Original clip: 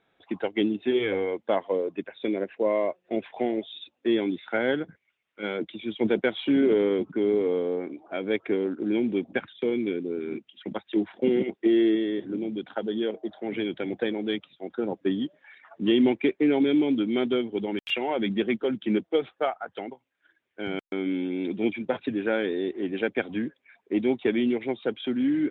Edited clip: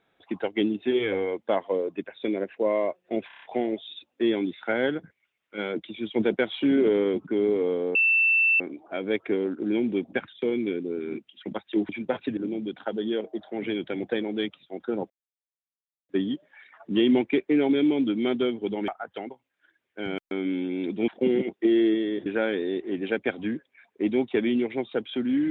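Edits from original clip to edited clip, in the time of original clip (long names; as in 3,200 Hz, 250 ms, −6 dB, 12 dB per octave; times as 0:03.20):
0:03.27: stutter 0.03 s, 6 plays
0:07.80: insert tone 2,670 Hz −17.5 dBFS 0.65 s
0:11.09–0:12.27: swap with 0:21.69–0:22.17
0:15.00: splice in silence 0.99 s
0:17.79–0:19.49: remove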